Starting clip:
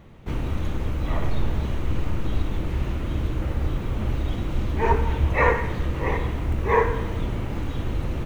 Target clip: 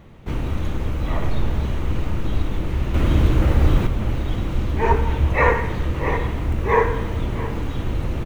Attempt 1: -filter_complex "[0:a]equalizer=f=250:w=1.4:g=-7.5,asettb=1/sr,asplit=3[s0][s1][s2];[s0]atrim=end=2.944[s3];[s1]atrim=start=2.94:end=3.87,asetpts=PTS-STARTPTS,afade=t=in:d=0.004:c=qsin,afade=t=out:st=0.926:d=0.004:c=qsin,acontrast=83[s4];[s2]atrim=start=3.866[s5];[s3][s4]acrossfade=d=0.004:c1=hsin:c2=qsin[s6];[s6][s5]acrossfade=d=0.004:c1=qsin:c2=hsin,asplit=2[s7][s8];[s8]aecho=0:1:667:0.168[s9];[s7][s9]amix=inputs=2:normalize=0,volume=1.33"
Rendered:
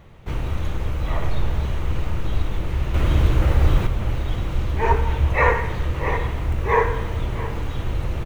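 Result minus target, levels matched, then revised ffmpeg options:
250 Hz band -4.0 dB
-filter_complex "[0:a]asettb=1/sr,asplit=3[s0][s1][s2];[s0]atrim=end=2.944[s3];[s1]atrim=start=2.94:end=3.87,asetpts=PTS-STARTPTS,afade=t=in:d=0.004:c=qsin,afade=t=out:st=0.926:d=0.004:c=qsin,acontrast=83[s4];[s2]atrim=start=3.866[s5];[s3][s4]acrossfade=d=0.004:c1=hsin:c2=qsin[s6];[s6][s5]acrossfade=d=0.004:c1=qsin:c2=hsin,asplit=2[s7][s8];[s8]aecho=0:1:667:0.168[s9];[s7][s9]amix=inputs=2:normalize=0,volume=1.33"

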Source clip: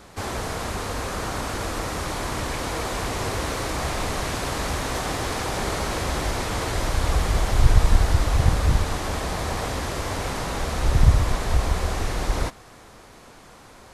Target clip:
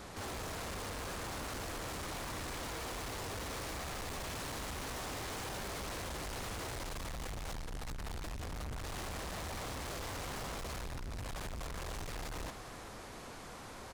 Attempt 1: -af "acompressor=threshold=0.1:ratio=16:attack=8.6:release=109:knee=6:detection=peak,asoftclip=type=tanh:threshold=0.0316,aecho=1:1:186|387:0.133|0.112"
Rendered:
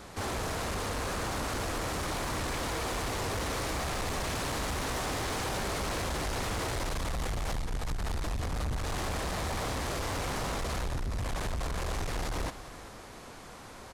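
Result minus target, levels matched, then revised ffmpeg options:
saturation: distortion -4 dB
-af "acompressor=threshold=0.1:ratio=16:attack=8.6:release=109:knee=6:detection=peak,asoftclip=type=tanh:threshold=0.00944,aecho=1:1:186|387:0.133|0.112"

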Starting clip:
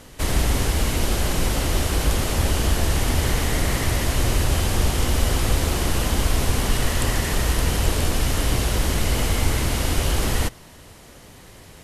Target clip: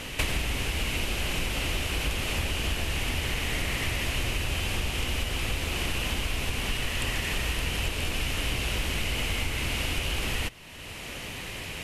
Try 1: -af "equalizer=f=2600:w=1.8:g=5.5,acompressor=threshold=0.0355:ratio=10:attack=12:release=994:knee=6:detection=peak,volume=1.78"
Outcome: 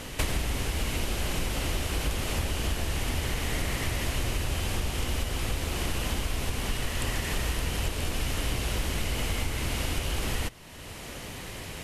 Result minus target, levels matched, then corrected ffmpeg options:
2 kHz band -3.0 dB
-af "equalizer=f=2600:w=1.8:g=13.5,acompressor=threshold=0.0355:ratio=10:attack=12:release=994:knee=6:detection=peak,volume=1.78"

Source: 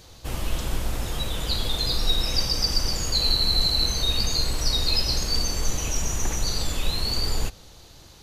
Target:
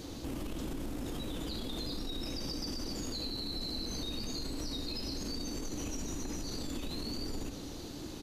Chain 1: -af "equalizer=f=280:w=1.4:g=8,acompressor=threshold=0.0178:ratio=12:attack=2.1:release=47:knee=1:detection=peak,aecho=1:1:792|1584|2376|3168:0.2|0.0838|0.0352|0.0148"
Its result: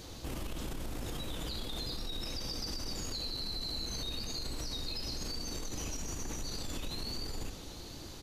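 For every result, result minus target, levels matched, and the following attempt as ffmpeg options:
echo 545 ms early; 250 Hz band -6.0 dB
-af "equalizer=f=280:w=1.4:g=8,acompressor=threshold=0.0178:ratio=12:attack=2.1:release=47:knee=1:detection=peak,aecho=1:1:1337|2674|4011|5348:0.2|0.0838|0.0352|0.0148"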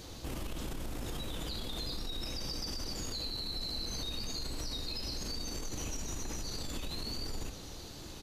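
250 Hz band -6.0 dB
-af "equalizer=f=280:w=1.4:g=18.5,acompressor=threshold=0.0178:ratio=12:attack=2.1:release=47:knee=1:detection=peak,aecho=1:1:1337|2674|4011|5348:0.2|0.0838|0.0352|0.0148"

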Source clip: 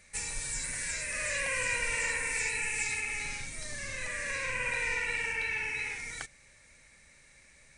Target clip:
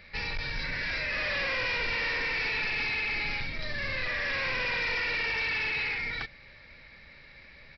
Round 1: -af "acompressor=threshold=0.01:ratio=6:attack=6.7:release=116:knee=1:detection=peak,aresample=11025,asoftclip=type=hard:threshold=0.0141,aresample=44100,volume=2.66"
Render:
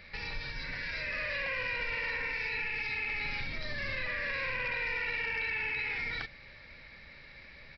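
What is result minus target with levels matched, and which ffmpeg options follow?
compression: peak gain reduction +12 dB
-af "aresample=11025,asoftclip=type=hard:threshold=0.0141,aresample=44100,volume=2.66"

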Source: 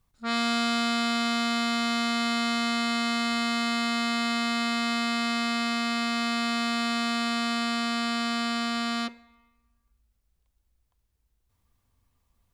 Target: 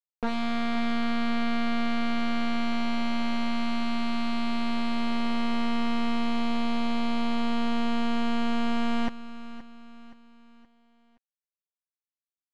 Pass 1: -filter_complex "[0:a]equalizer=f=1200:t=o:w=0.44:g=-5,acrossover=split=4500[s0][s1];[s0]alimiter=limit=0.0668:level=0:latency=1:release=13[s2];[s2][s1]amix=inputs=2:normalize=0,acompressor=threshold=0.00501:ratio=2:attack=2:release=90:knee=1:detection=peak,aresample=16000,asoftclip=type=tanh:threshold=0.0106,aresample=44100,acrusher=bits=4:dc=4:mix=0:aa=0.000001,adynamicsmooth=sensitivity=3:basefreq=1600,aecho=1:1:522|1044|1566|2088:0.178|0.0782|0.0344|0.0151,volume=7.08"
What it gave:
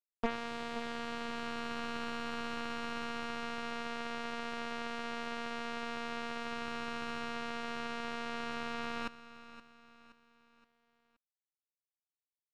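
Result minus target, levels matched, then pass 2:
compression: peak gain reduction +10.5 dB
-filter_complex "[0:a]equalizer=f=1200:t=o:w=0.44:g=-5,acrossover=split=4500[s0][s1];[s0]alimiter=limit=0.0668:level=0:latency=1:release=13[s2];[s2][s1]amix=inputs=2:normalize=0,aresample=16000,asoftclip=type=tanh:threshold=0.0106,aresample=44100,acrusher=bits=4:dc=4:mix=0:aa=0.000001,adynamicsmooth=sensitivity=3:basefreq=1600,aecho=1:1:522|1044|1566|2088:0.178|0.0782|0.0344|0.0151,volume=7.08"

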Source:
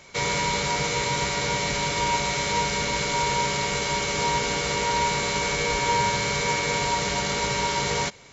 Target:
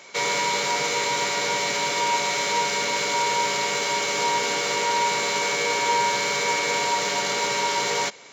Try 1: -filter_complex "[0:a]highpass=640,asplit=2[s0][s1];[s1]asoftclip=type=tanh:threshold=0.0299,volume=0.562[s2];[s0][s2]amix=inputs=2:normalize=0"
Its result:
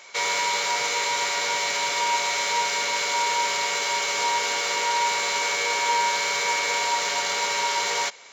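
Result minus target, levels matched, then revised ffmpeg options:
250 Hz band -9.0 dB
-filter_complex "[0:a]highpass=310,asplit=2[s0][s1];[s1]asoftclip=type=tanh:threshold=0.0299,volume=0.562[s2];[s0][s2]amix=inputs=2:normalize=0"

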